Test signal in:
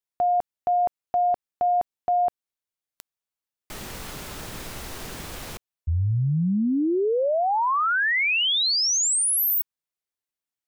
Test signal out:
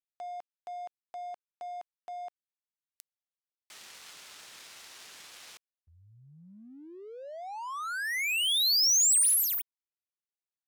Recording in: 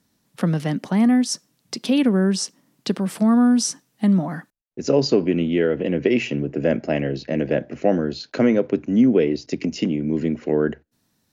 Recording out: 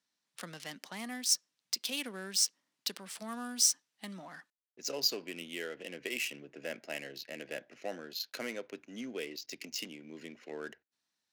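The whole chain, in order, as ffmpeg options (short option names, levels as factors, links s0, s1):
-af "adynamicsmooth=sensitivity=8:basefreq=3300,aderivative,volume=1.19"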